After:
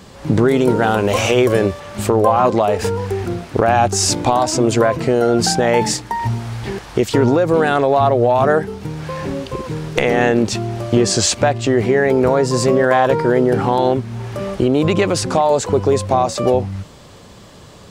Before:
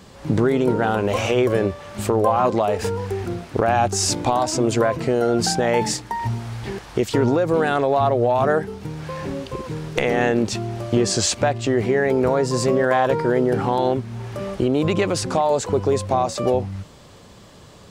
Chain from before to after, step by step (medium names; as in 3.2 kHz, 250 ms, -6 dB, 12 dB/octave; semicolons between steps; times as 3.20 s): 0.48–1.80 s: treble shelf 3.8 kHz +6.5 dB; trim +4.5 dB